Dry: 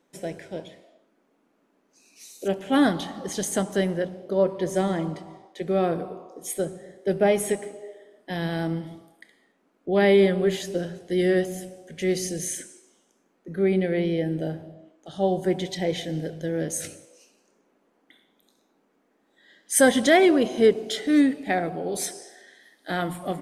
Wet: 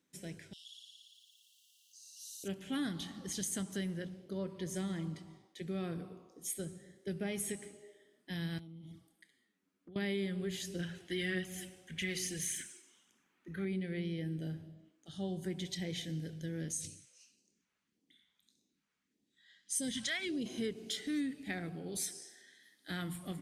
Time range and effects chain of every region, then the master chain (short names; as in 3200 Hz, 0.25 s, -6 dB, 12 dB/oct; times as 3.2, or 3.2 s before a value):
0.53–2.44 brick-wall FIR high-pass 2700 Hz + flutter echo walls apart 9.8 m, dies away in 1.4 s + fast leveller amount 50%
8.58–9.96 envelope flanger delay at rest 11.4 ms, full sweep at -29 dBFS + compressor 12:1, threshold -38 dBFS
10.79–13.65 phaser 1.7 Hz, delay 3.5 ms, feedback 38% + band shelf 1600 Hz +9 dB 2.5 oct
16.72–20.46 LPF 8800 Hz + phaser stages 2, 1.7 Hz, lowest notch 270–1400 Hz
whole clip: HPF 53 Hz; passive tone stack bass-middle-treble 6-0-2; compressor 2.5:1, threshold -45 dBFS; gain +9.5 dB